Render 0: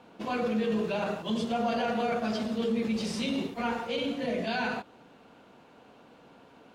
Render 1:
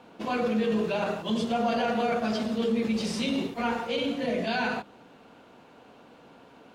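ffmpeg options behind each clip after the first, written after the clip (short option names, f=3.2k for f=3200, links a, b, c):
-af "bandreject=f=50:t=h:w=6,bandreject=f=100:t=h:w=6,bandreject=f=150:t=h:w=6,bandreject=f=200:t=h:w=6,volume=2.5dB"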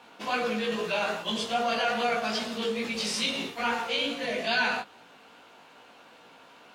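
-af "tiltshelf=f=630:g=-8,flanger=delay=16.5:depth=3.2:speed=2.4,volume=1.5dB"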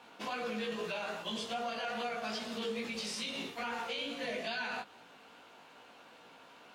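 -af "alimiter=level_in=1dB:limit=-24dB:level=0:latency=1:release=240,volume=-1dB,volume=-3.5dB"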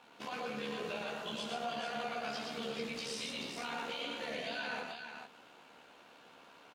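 -filter_complex "[0:a]tremolo=f=73:d=0.571,asplit=2[a][b];[b]aecho=0:1:118|438:0.668|0.501[c];[a][c]amix=inputs=2:normalize=0,volume=-1.5dB"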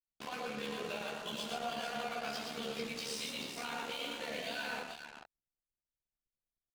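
-af "aeval=exprs='sgn(val(0))*max(abs(val(0))-0.00237,0)':c=same,highshelf=f=6.1k:g=5,anlmdn=0.00158,volume=1dB"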